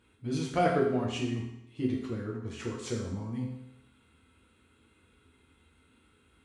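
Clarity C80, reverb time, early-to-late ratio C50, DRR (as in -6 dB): 6.0 dB, 0.85 s, 3.5 dB, -3.5 dB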